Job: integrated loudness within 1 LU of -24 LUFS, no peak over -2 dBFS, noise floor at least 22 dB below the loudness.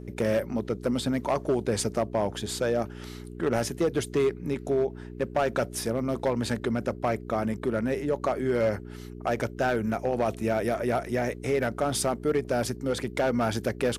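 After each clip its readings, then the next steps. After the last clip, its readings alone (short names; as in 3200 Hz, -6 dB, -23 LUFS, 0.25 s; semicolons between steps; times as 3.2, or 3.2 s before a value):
clipped 1.2%; flat tops at -18.5 dBFS; hum 60 Hz; harmonics up to 420 Hz; hum level -39 dBFS; loudness -28.0 LUFS; peak -18.5 dBFS; loudness target -24.0 LUFS
-> clip repair -18.5 dBFS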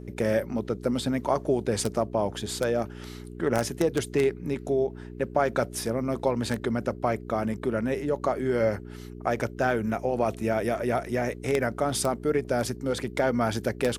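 clipped 0.0%; hum 60 Hz; harmonics up to 420 Hz; hum level -39 dBFS
-> de-hum 60 Hz, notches 7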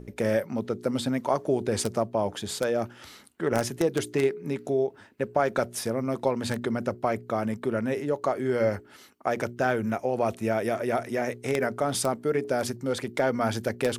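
hum none; loudness -28.0 LUFS; peak -9.5 dBFS; loudness target -24.0 LUFS
-> gain +4 dB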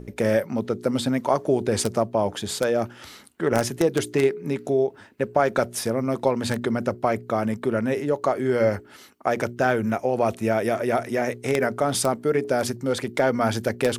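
loudness -24.0 LUFS; peak -5.5 dBFS; noise floor -48 dBFS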